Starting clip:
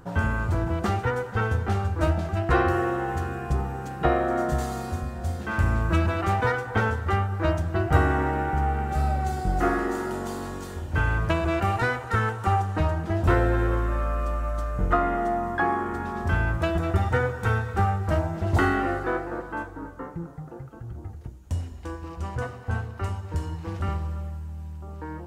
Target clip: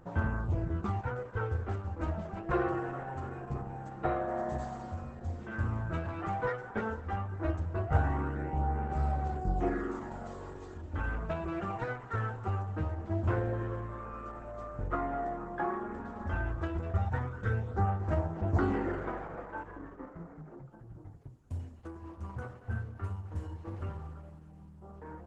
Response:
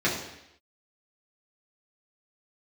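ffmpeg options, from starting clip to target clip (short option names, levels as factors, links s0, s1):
-filter_complex "[0:a]equalizer=f=5100:t=o:w=2.2:g=-9.5,bandreject=f=60:t=h:w=6,bandreject=f=120:t=h:w=6,bandreject=f=180:t=h:w=6,bandreject=f=240:t=h:w=6,flanger=delay=0:depth=9.6:regen=-4:speed=0.11:shape=sinusoidal,asettb=1/sr,asplit=3[s0][s1][s2];[s0]atrim=end=18.224[s3];[s1]atrim=start=18.22:end=20.63,asetpts=PTS-STARTPTS,afade=t=in:d=0.004:c=qsin,afade=t=out:st=2.406:d=0.004:c=qsin,asplit=7[s4][s5][s6][s7][s8][s9][s10];[s5]adelay=152,afreqshift=120,volume=0.316[s11];[s6]adelay=304,afreqshift=240,volume=0.168[s12];[s7]adelay=456,afreqshift=360,volume=0.0891[s13];[s8]adelay=608,afreqshift=480,volume=0.0473[s14];[s9]adelay=760,afreqshift=600,volume=0.0248[s15];[s10]adelay=912,afreqshift=720,volume=0.0132[s16];[s4][s11][s12][s13][s14][s15][s16]amix=inputs=7:normalize=0,atrim=end_sample=106281[s17];[s2]atrim=start=20.626[s18];[s3][s17]acrossfade=d=0.004:c1=hsin:c2=qsin[s19];[s19][s18]acrossfade=d=0.004:c1=qsin:c2=hsin,volume=0.562" -ar 48000 -c:a libopus -b:a 12k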